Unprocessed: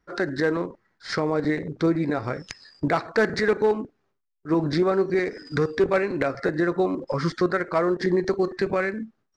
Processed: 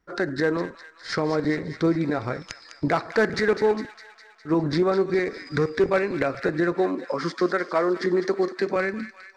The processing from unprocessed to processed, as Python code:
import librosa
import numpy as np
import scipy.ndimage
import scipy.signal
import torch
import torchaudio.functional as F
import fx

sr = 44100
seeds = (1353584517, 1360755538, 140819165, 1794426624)

y = fx.highpass(x, sr, hz=200.0, slope=24, at=(6.75, 8.76))
y = fx.echo_wet_highpass(y, sr, ms=204, feedback_pct=64, hz=1700.0, wet_db=-9.5)